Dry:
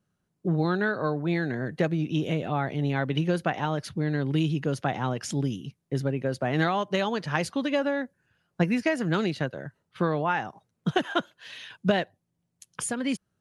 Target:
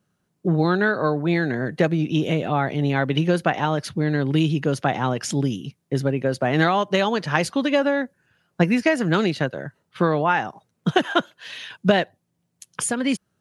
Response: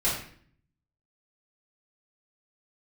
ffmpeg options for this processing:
-af "lowshelf=f=71:g=-10,volume=6.5dB"

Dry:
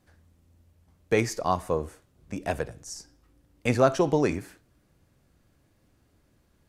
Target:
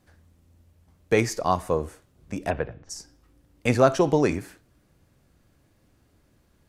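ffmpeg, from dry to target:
-filter_complex "[0:a]asplit=3[a][b][c];[a]afade=t=out:st=2.49:d=0.02[d];[b]lowpass=f=3k:w=0.5412,lowpass=f=3k:w=1.3066,afade=t=in:st=2.49:d=0.02,afade=t=out:st=2.89:d=0.02[e];[c]afade=t=in:st=2.89:d=0.02[f];[d][e][f]amix=inputs=3:normalize=0,volume=2.5dB"

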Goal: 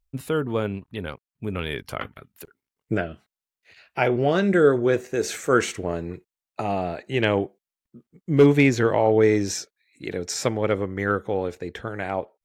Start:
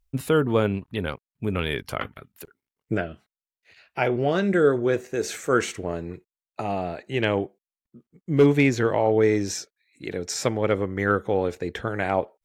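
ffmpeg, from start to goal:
-af "dynaudnorm=f=530:g=9:m=9dB,volume=-4dB"

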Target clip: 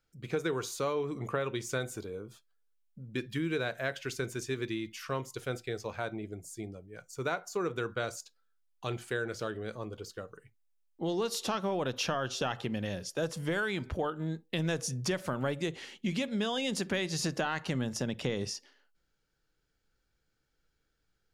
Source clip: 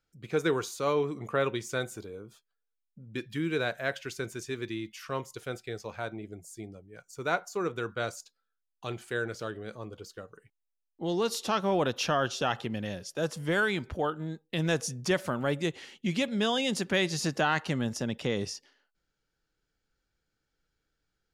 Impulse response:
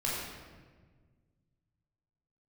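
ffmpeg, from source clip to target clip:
-filter_complex "[0:a]acompressor=threshold=-30dB:ratio=6,asplit=2[a][b];[1:a]atrim=start_sample=2205,atrim=end_sample=3087,lowshelf=f=470:g=12[c];[b][c]afir=irnorm=-1:irlink=0,volume=-26.5dB[d];[a][d]amix=inputs=2:normalize=0,volume=1dB"

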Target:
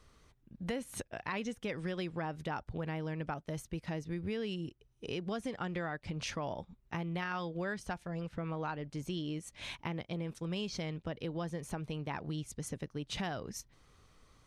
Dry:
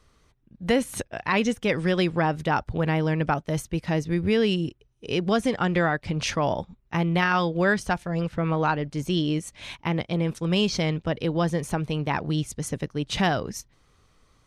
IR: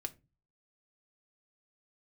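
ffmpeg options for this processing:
-af "acompressor=threshold=-39dB:ratio=2.5,volume=-2dB"

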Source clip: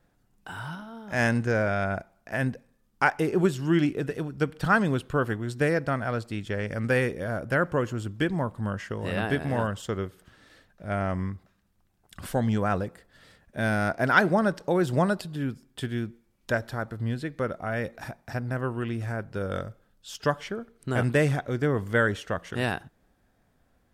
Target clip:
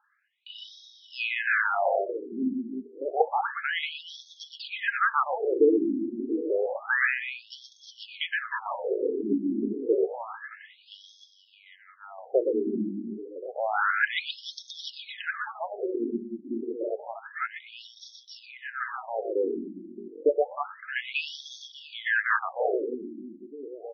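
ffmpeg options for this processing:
-af "bandreject=f=60:t=h:w=6,bandreject=f=120:t=h:w=6,bandreject=f=180:t=h:w=6,bandreject=f=240:t=h:w=6,bandreject=f=300:t=h:w=6,bandreject=f=360:t=h:w=6,bandreject=f=420:t=h:w=6,bandreject=f=480:t=h:w=6,aecho=1:1:2.4:0.38,aecho=1:1:120|312|619.2|1111|1897:0.631|0.398|0.251|0.158|0.1,alimiter=level_in=10.5dB:limit=-1dB:release=50:level=0:latency=1,afftfilt=real='re*between(b*sr/1024,260*pow(4600/260,0.5+0.5*sin(2*PI*0.29*pts/sr))/1.41,260*pow(4600/260,0.5+0.5*sin(2*PI*0.29*pts/sr))*1.41)':imag='im*between(b*sr/1024,260*pow(4600/260,0.5+0.5*sin(2*PI*0.29*pts/sr))/1.41,260*pow(4600/260,0.5+0.5*sin(2*PI*0.29*pts/sr))*1.41)':win_size=1024:overlap=0.75,volume=-4dB"

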